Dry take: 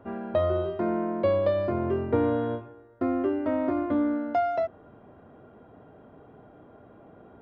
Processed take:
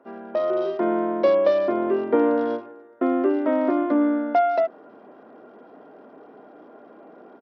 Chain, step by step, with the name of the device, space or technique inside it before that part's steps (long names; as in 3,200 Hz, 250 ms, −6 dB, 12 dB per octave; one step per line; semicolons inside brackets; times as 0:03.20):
Bluetooth headset (high-pass filter 240 Hz 24 dB per octave; automatic gain control gain up to 8 dB; downsampling to 16,000 Hz; level −2 dB; SBC 64 kbit/s 44,100 Hz)